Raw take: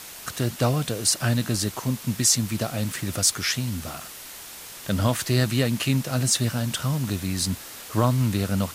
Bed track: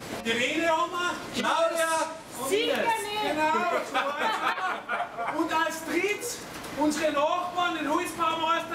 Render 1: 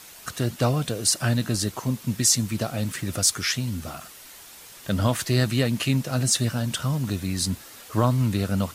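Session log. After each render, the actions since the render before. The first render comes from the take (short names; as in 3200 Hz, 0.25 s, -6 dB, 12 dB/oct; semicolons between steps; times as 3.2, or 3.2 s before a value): denoiser 6 dB, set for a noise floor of -41 dBFS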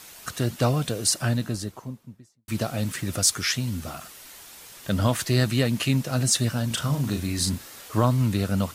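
0.94–2.48 studio fade out; 6.67–7.98 doubler 35 ms -6 dB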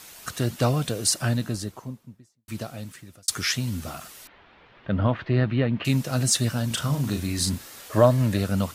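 1.89–3.28 fade out; 4.27–5.85 Bessel low-pass 2000 Hz, order 6; 7.9–8.39 small resonant body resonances 590/1700 Hz, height 12 dB, ringing for 25 ms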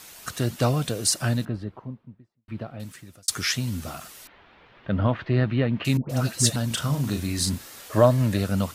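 1.45–2.8 air absorption 430 m; 5.97–6.56 dispersion highs, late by 0.126 s, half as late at 970 Hz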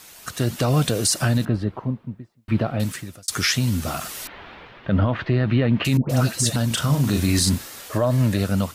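AGC gain up to 14 dB; limiter -10 dBFS, peak gain reduction 9 dB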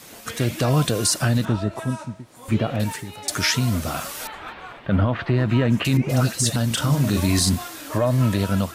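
add bed track -10.5 dB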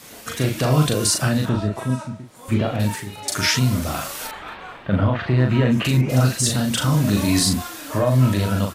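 doubler 39 ms -3.5 dB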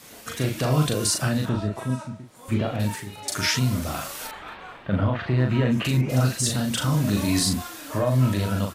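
gain -4 dB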